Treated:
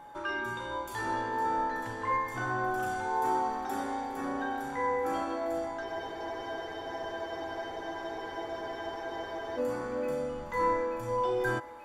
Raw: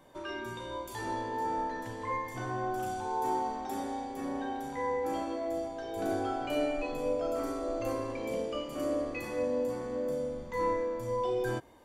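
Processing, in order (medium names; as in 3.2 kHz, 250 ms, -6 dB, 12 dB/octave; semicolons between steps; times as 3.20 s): peaking EQ 1.4 kHz +10.5 dB 0.81 oct; whistle 840 Hz -47 dBFS; on a send: thinning echo 883 ms, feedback 66%, high-pass 420 Hz, level -16 dB; on the sum: spectral freeze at 5.88 s, 3.70 s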